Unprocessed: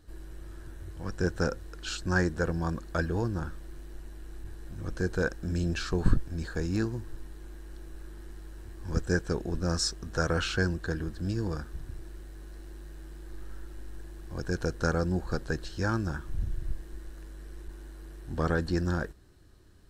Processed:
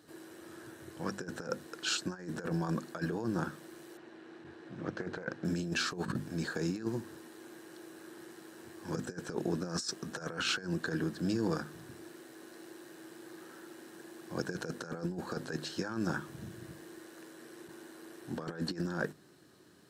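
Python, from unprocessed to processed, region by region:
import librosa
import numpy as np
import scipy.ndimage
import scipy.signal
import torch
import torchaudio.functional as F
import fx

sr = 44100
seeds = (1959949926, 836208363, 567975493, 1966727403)

y = fx.chain(x, sr, fx.lowpass(hz=3500.0, slope=12),
    fx.hum_notches(base_hz=60, count=2),
    fx.doppler_dist(depth_ms=0.38), at=(3.97, 5.45))
y = scipy.signal.sosfilt(scipy.signal.butter(4, 150.0, 'highpass', fs=sr, output='sos'), y)
y = fx.hum_notches(y, sr, base_hz=50, count=5)
y = fx.over_compress(y, sr, threshold_db=-34.0, ratio=-0.5)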